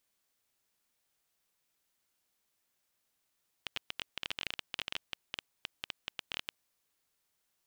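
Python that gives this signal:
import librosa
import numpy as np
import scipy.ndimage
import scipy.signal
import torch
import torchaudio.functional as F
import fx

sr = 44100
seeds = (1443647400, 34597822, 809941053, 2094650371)

y = fx.geiger_clicks(sr, seeds[0], length_s=2.86, per_s=14.0, level_db=-18.0)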